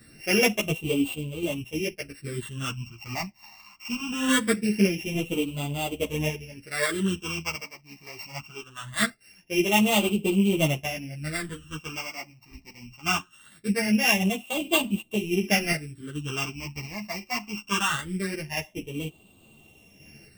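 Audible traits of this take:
a buzz of ramps at a fixed pitch in blocks of 16 samples
phaser sweep stages 8, 0.22 Hz, lowest notch 440–1,700 Hz
sample-and-hold tremolo
a shimmering, thickened sound

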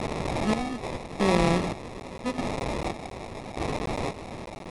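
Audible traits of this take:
a quantiser's noise floor 6 bits, dither triangular
chopped level 0.84 Hz, depth 65%, duty 45%
aliases and images of a low sample rate 1,500 Hz, jitter 0%
IMA ADPCM

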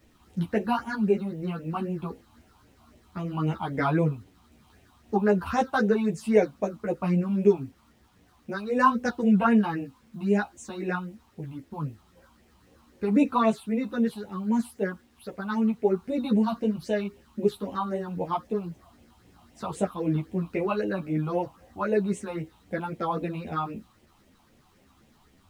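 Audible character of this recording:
phaser sweep stages 6, 3.8 Hz, lowest notch 460–1,300 Hz
a quantiser's noise floor 12 bits, dither none
a shimmering, thickened sound

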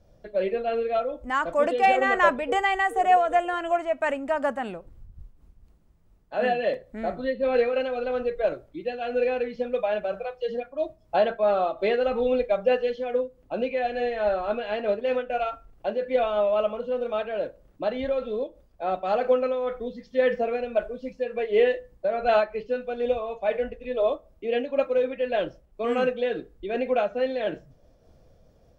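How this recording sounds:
amplitude modulation by smooth noise

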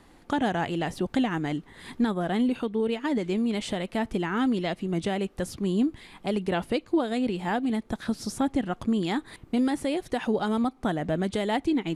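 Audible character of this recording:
background noise floor −55 dBFS
spectral slope −5.0 dB per octave

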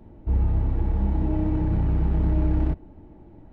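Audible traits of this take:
background noise floor −48 dBFS
spectral slope −9.5 dB per octave

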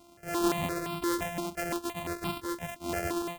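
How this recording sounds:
a buzz of ramps at a fixed pitch in blocks of 128 samples
notches that jump at a steady rate 5.8 Hz 470–1,800 Hz

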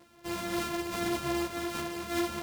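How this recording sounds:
a buzz of ramps at a fixed pitch in blocks of 128 samples
a shimmering, thickened sound

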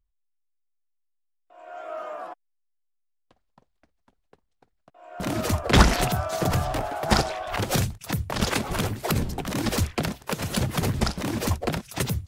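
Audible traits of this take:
background noise floor −74 dBFS
spectral slope −4.5 dB per octave

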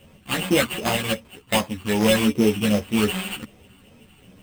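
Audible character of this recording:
a buzz of ramps at a fixed pitch in blocks of 16 samples
phaser sweep stages 12, 2.6 Hz, lowest notch 560–2,500 Hz
aliases and images of a low sample rate 5,700 Hz, jitter 0%
a shimmering, thickened sound

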